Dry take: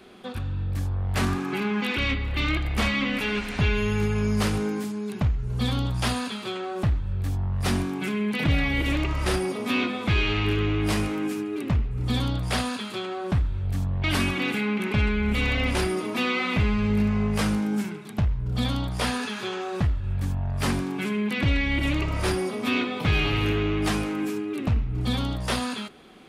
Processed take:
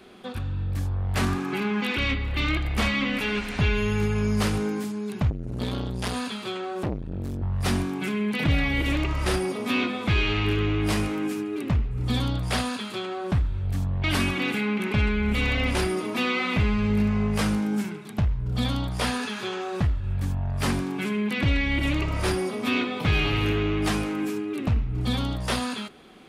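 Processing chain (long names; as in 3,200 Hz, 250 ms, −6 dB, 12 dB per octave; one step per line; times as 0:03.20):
0:05.30–0:07.42: saturating transformer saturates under 440 Hz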